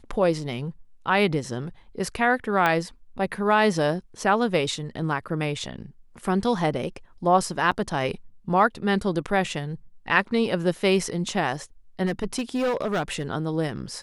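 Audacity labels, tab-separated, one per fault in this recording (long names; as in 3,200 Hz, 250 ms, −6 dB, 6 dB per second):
2.660000	2.660000	click −10 dBFS
7.710000	7.720000	drop-out 6 ms
12.050000	13.230000	clipping −20.5 dBFS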